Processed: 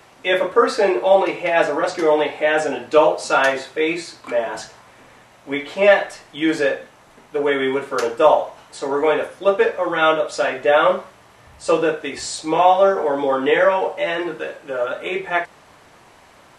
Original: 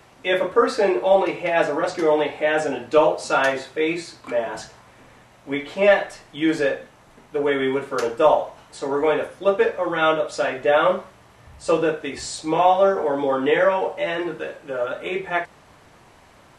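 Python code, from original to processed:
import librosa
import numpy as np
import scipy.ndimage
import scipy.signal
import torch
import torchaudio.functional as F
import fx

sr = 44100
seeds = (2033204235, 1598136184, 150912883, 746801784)

y = fx.low_shelf(x, sr, hz=220.0, db=-7.5)
y = y * librosa.db_to_amplitude(3.5)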